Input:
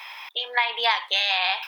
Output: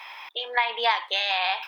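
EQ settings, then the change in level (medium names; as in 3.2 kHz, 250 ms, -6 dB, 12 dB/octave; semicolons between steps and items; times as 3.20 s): tilt EQ -2 dB/octave; bass shelf 93 Hz +7.5 dB; 0.0 dB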